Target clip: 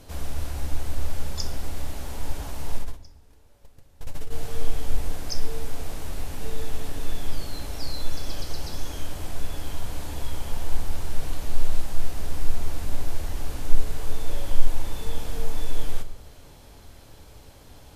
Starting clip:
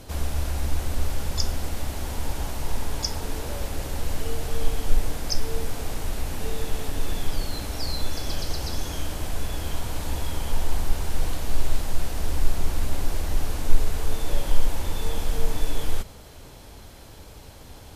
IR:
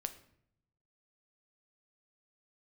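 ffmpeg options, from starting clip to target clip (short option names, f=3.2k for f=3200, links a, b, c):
-filter_complex "[0:a]asplit=3[a][b][c];[a]afade=t=out:st=2.74:d=0.02[d];[b]agate=range=-25dB:threshold=-20dB:ratio=16:detection=peak,afade=t=in:st=2.74:d=0.02,afade=t=out:st=4.34:d=0.02[e];[c]afade=t=in:st=4.34:d=0.02[f];[d][e][f]amix=inputs=3:normalize=0[g];[1:a]atrim=start_sample=2205[h];[g][h]afir=irnorm=-1:irlink=0,volume=-3dB"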